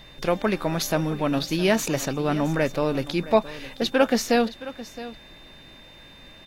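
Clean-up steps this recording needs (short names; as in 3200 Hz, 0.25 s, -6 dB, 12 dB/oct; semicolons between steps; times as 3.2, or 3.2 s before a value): notch 3600 Hz, Q 30; inverse comb 0.667 s -16 dB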